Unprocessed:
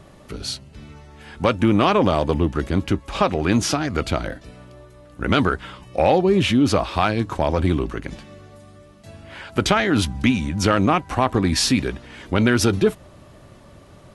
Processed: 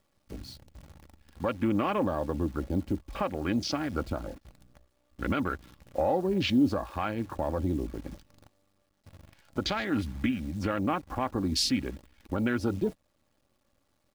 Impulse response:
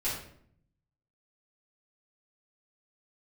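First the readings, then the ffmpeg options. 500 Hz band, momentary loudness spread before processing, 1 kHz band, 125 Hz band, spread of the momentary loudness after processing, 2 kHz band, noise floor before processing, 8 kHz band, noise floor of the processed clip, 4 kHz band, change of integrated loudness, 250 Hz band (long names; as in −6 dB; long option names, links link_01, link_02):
−11.0 dB, 13 LU, −11.5 dB, −12.0 dB, 14 LU, −12.0 dB, −47 dBFS, −13.0 dB, −73 dBFS, −9.5 dB, −10.0 dB, −9.0 dB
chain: -af "afwtdn=0.0447,equalizer=frequency=4600:width=2.7:gain=6,acrusher=bits=8:dc=4:mix=0:aa=0.000001,alimiter=limit=-9dB:level=0:latency=1:release=489,aecho=1:1:3.6:0.34,volume=-8dB"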